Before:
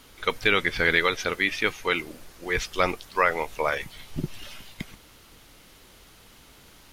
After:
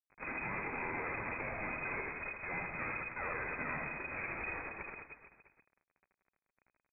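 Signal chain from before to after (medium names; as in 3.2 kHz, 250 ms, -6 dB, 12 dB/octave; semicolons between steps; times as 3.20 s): formants flattened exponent 0.3; fuzz box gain 41 dB, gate -40 dBFS; valve stage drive 37 dB, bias 0.3; frequency inversion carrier 2.5 kHz; on a send: reverse bouncing-ball echo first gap 80 ms, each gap 1.25×, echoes 5; on the sum: trim +1 dB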